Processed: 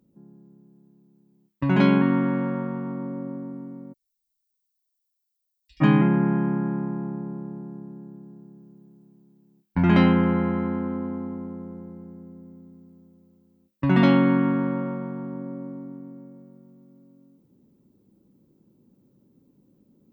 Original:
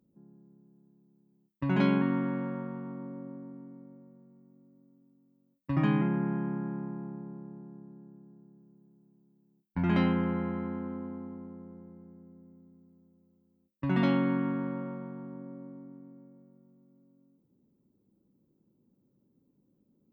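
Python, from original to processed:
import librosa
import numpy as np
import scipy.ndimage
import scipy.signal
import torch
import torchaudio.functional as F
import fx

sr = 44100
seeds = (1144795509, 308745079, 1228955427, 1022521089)

p1 = fx.rider(x, sr, range_db=3, speed_s=2.0)
p2 = x + F.gain(torch.from_numpy(p1), 2.0).numpy()
p3 = fx.cheby2_bandstop(p2, sr, low_hz=120.0, high_hz=1300.0, order=4, stop_db=60, at=(3.92, 5.8), fade=0.02)
y = F.gain(torch.from_numpy(p3), 1.0).numpy()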